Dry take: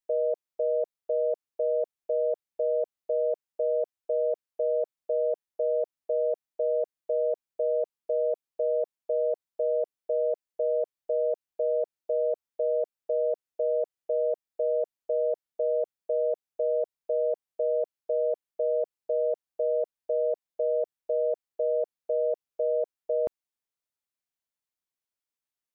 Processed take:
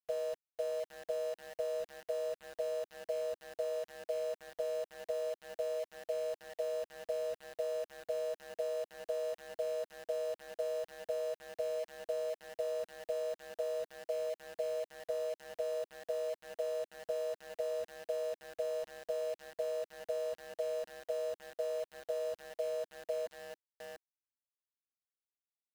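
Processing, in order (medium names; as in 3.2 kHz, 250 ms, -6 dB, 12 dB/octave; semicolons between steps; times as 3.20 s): formants replaced by sine waves; on a send: feedback delay 702 ms, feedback 37%, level -18.5 dB; on the sum: compression 12:1, threshold -31 dBFS, peak gain reduction 9 dB; small samples zeroed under -42.5 dBFS; peaking EQ 320 Hz -9.5 dB 0.31 oct; trim -2 dB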